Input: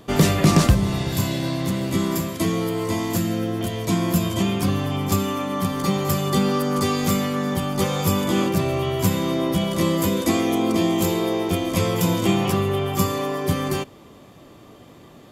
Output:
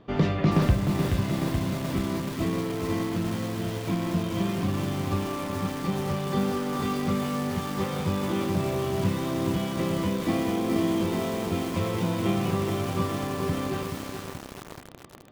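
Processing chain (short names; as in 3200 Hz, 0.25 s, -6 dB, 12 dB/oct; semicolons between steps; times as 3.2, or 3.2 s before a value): air absorption 260 m; lo-fi delay 0.427 s, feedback 80%, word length 5-bit, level -5 dB; gain -6 dB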